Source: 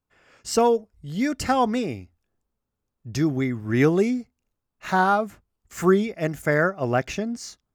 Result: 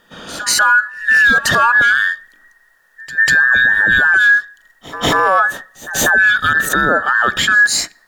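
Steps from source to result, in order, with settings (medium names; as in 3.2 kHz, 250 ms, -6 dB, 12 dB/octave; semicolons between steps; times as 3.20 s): every band turned upside down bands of 2 kHz; dynamic bell 5.6 kHz, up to -5 dB, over -41 dBFS, Q 1.1; compression 2.5:1, threshold -33 dBFS, peak gain reduction 13 dB; pre-echo 188 ms -23 dB; on a send at -23.5 dB: reverberation RT60 0.65 s, pre-delay 7 ms; on the sum: speed mistake 25 fps video run at 24 fps; loudness maximiser +29 dB; trim -3.5 dB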